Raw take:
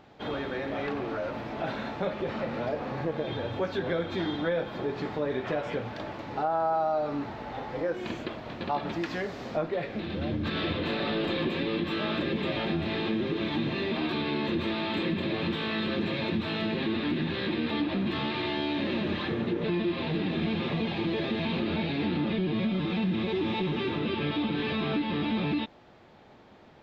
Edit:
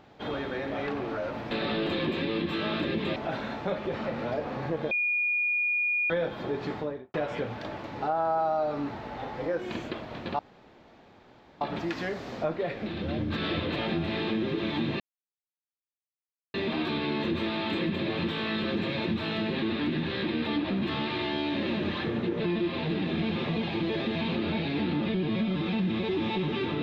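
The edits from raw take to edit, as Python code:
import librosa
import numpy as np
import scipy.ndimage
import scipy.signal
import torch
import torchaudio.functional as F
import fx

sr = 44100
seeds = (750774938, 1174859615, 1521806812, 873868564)

y = fx.studio_fade_out(x, sr, start_s=5.08, length_s=0.41)
y = fx.edit(y, sr, fx.bleep(start_s=3.26, length_s=1.19, hz=2440.0, db=-24.0),
    fx.insert_room_tone(at_s=8.74, length_s=1.22),
    fx.move(start_s=10.89, length_s=1.65, to_s=1.51),
    fx.insert_silence(at_s=13.78, length_s=1.54), tone=tone)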